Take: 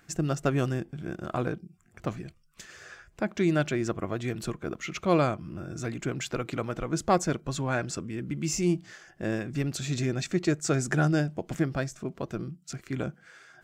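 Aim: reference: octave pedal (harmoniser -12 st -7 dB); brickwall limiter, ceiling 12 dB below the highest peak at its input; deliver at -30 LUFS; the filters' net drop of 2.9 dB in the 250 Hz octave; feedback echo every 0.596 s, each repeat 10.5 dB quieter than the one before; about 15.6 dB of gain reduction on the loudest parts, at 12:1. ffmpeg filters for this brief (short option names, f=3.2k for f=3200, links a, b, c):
-filter_complex "[0:a]equalizer=f=250:t=o:g=-4.5,acompressor=threshold=-35dB:ratio=12,alimiter=level_in=8.5dB:limit=-24dB:level=0:latency=1,volume=-8.5dB,aecho=1:1:596|1192|1788:0.299|0.0896|0.0269,asplit=2[a][b];[b]asetrate=22050,aresample=44100,atempo=2,volume=-7dB[c];[a][c]amix=inputs=2:normalize=0,volume=13dB"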